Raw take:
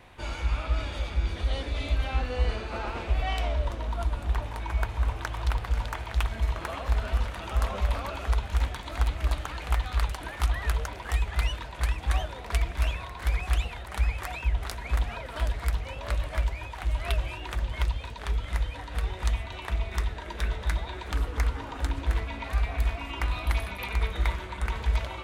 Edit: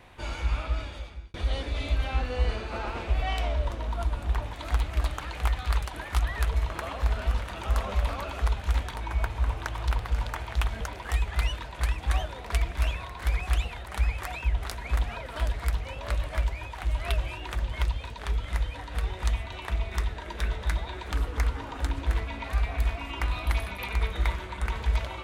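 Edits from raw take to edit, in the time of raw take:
0.58–1.34 s: fade out
4.53–6.40 s: swap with 8.80–10.81 s

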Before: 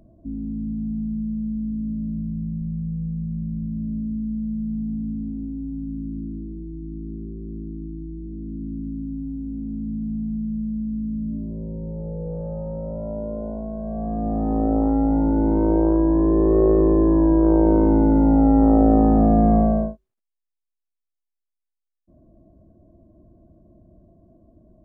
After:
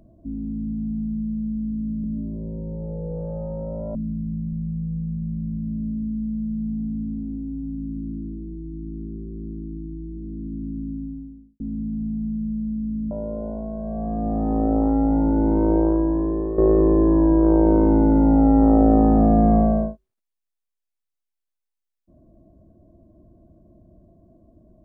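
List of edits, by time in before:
8.94–9.69 s: studio fade out
11.20–13.11 s: move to 2.04 s
15.77–16.58 s: fade out, to -11 dB

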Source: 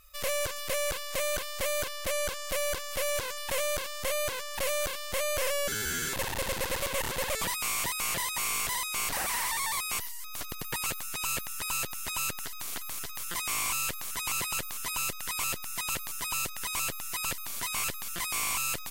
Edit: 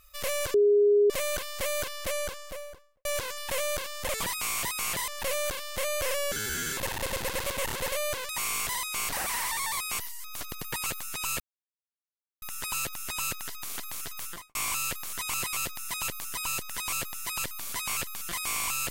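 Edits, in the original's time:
0.54–1.10 s: bleep 411 Hz -17.5 dBFS
2.03–3.05 s: studio fade out
4.07–4.44 s: swap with 7.28–8.29 s
11.40 s: insert silence 1.02 s
13.21–13.53 s: studio fade out
14.51–15.40 s: delete

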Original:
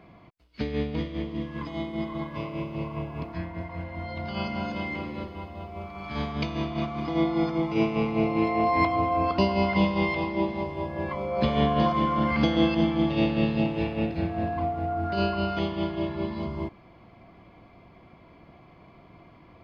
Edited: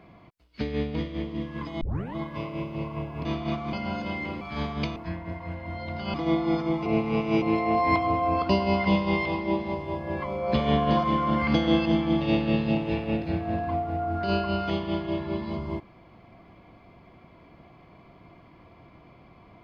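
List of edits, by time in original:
1.81 s: tape start 0.34 s
3.25–4.43 s: swap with 6.55–7.03 s
5.11–6.00 s: delete
7.75–8.31 s: reverse

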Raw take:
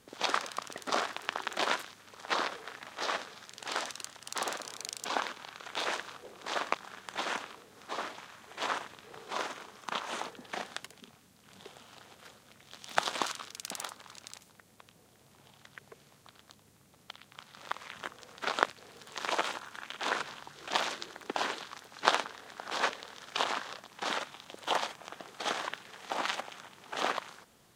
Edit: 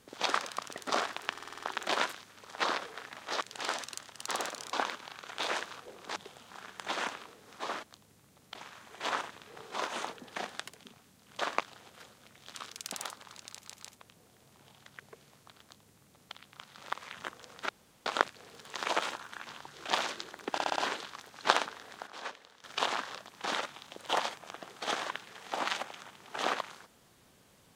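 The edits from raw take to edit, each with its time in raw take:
1.30 s: stutter 0.05 s, 7 plays
3.11–3.48 s: delete
4.80–5.10 s: delete
6.53–6.79 s: swap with 11.56–11.90 s
9.44–10.04 s: delete
12.79–13.33 s: delete
14.29 s: stutter in place 0.15 s, 3 plays
16.40–17.12 s: copy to 8.12 s
18.48 s: insert room tone 0.37 s
19.89–20.29 s: delete
21.34 s: stutter 0.06 s, 5 plays
22.65–23.22 s: gain -11 dB

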